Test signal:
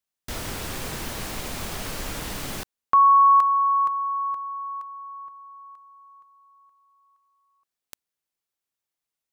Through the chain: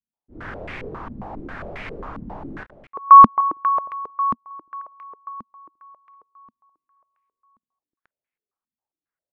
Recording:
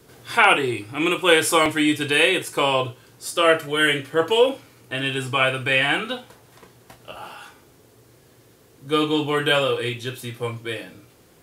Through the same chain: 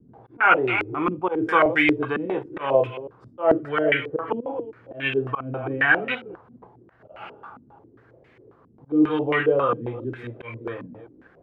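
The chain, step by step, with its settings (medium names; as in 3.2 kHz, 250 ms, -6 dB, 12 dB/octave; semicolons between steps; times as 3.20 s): chunks repeated in reverse 205 ms, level -13 dB; slow attack 152 ms; step-sequenced low-pass 7.4 Hz 230–2200 Hz; trim -3.5 dB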